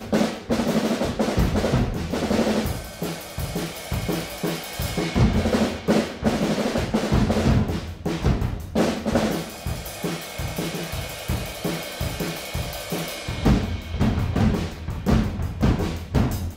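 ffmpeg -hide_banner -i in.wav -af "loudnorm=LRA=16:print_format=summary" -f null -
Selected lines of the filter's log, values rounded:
Input Integrated:    -24.5 LUFS
Input True Peak:      -7.3 dBTP
Input LRA:             3.5 LU
Input Threshold:     -34.5 LUFS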